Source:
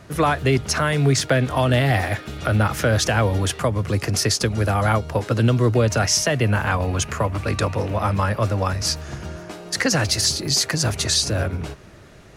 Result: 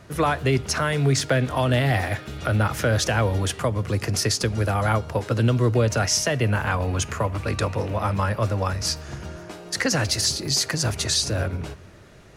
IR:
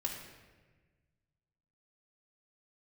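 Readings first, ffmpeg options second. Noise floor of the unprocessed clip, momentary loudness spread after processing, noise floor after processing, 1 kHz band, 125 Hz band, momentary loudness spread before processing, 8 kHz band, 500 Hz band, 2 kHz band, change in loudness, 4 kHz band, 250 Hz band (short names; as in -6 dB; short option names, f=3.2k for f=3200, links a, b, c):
-44 dBFS, 6 LU, -45 dBFS, -2.5 dB, -2.5 dB, 6 LU, -2.5 dB, -2.5 dB, -2.5 dB, -2.5 dB, -2.5 dB, -3.0 dB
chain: -filter_complex "[0:a]asplit=2[a][b];[1:a]atrim=start_sample=2205,asetrate=70560,aresample=44100[c];[b][c]afir=irnorm=-1:irlink=0,volume=-14dB[d];[a][d]amix=inputs=2:normalize=0,volume=-3.5dB"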